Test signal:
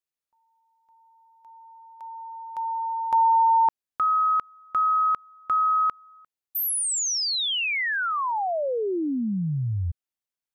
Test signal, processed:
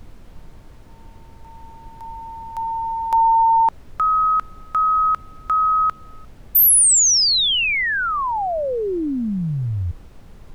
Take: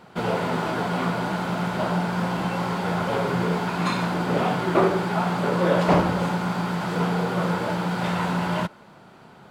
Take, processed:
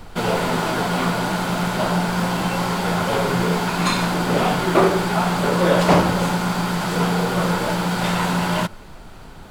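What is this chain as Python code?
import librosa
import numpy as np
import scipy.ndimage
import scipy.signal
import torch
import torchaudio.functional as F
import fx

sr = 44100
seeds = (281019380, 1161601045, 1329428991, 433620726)

y = fx.high_shelf(x, sr, hz=4200.0, db=11.0)
y = fx.dmg_noise_colour(y, sr, seeds[0], colour='brown', level_db=-43.0)
y = F.gain(torch.from_numpy(y), 3.5).numpy()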